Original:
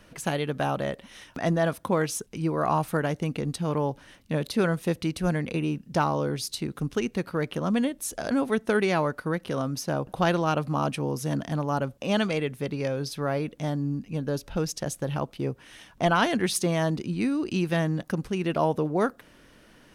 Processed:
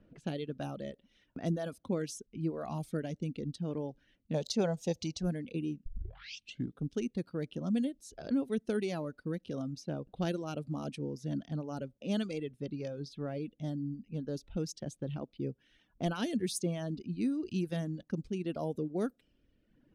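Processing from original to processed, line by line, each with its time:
0:04.34–0:05.23: drawn EQ curve 200 Hz 0 dB, 300 Hz −5 dB, 590 Hz +9 dB, 840 Hz +15 dB, 1,300 Hz +1 dB, 3,100 Hz +4 dB, 6,600 Hz +13 dB, 10,000 Hz −8 dB
0:05.86: tape start 0.94 s
whole clip: reverb reduction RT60 1.2 s; low-pass that shuts in the quiet parts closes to 1,600 Hz, open at −22 dBFS; octave-band graphic EQ 250/1,000/2,000 Hz +4/−12/−7 dB; level −7.5 dB

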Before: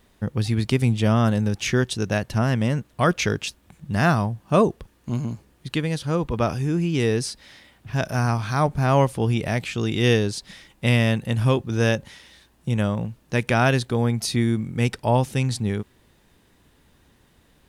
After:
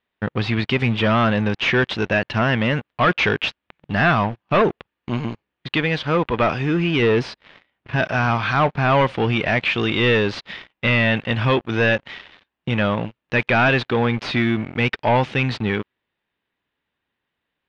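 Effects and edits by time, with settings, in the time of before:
0:07.02–0:07.96: tilt shelving filter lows +3.5 dB
whole clip: spectral tilt +3.5 dB per octave; leveller curve on the samples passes 5; low-pass filter 3,000 Hz 24 dB per octave; level −7.5 dB

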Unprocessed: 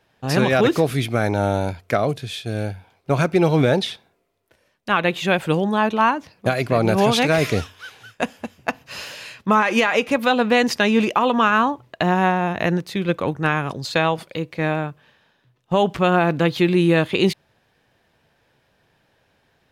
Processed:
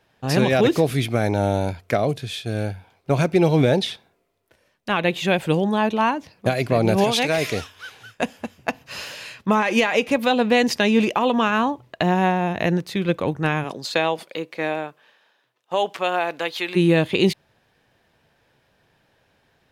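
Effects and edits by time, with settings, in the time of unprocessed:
0:07.04–0:07.76: low-shelf EQ 350 Hz −8.5 dB
0:13.63–0:16.75: high-pass filter 230 Hz → 770 Hz
whole clip: dynamic equaliser 1,300 Hz, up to −7 dB, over −34 dBFS, Q 2

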